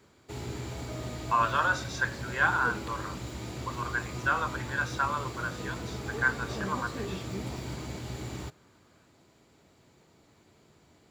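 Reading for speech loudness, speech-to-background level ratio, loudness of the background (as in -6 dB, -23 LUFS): -30.5 LUFS, 7.5 dB, -38.0 LUFS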